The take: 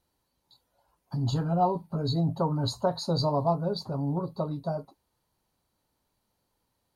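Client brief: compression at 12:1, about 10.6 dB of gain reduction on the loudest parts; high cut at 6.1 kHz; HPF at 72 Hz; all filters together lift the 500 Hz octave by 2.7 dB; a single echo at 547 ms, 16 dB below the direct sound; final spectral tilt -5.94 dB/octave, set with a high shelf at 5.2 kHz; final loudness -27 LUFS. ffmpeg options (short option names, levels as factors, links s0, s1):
-af "highpass=72,lowpass=6100,equalizer=f=500:t=o:g=3.5,highshelf=f=5200:g=-5,acompressor=threshold=0.0355:ratio=12,aecho=1:1:547:0.158,volume=2.37"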